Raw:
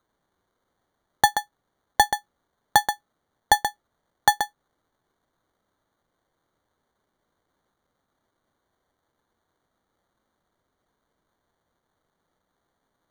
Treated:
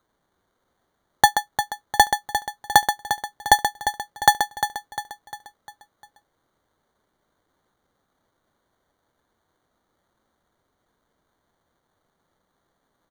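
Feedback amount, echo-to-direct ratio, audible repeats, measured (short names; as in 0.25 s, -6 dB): 47%, -8.5 dB, 4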